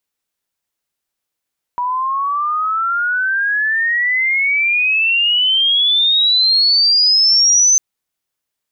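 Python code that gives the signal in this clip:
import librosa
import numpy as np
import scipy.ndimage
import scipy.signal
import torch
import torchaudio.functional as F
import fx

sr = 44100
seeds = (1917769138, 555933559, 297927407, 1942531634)

y = fx.chirp(sr, length_s=6.0, from_hz=970.0, to_hz=6200.0, law='logarithmic', from_db=-16.0, to_db=-8.0)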